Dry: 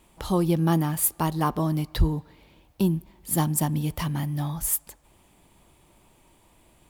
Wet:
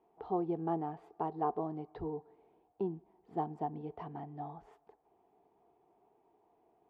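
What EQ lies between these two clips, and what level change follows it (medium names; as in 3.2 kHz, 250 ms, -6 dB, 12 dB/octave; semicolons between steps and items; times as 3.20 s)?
two resonant band-passes 560 Hz, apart 0.71 oct; distance through air 210 m; +1.0 dB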